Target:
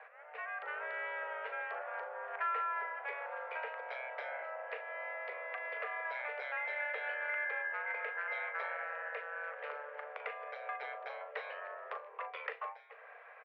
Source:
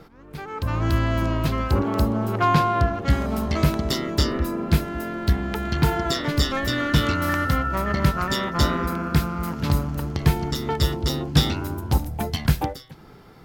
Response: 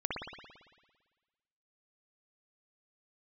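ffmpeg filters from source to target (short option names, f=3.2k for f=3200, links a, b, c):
-filter_complex "[0:a]highpass=f=170:t=q:w=0.5412,highpass=f=170:t=q:w=1.307,lowpass=f=2k:t=q:w=0.5176,lowpass=f=2k:t=q:w=0.7071,lowpass=f=2k:t=q:w=1.932,afreqshift=300,acompressor=threshold=-38dB:ratio=2.5,aderivative,asplit=2[a][b];[b]adelay=39,volume=-11dB[c];[a][c]amix=inputs=2:normalize=0,volume=12dB"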